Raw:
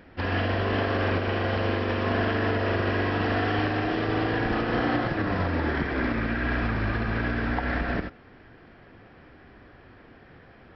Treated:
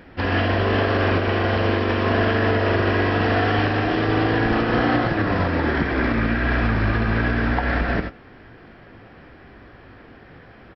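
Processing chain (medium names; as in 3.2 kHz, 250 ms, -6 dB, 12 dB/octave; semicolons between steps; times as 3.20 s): doubling 18 ms -12 dB; trim +5.5 dB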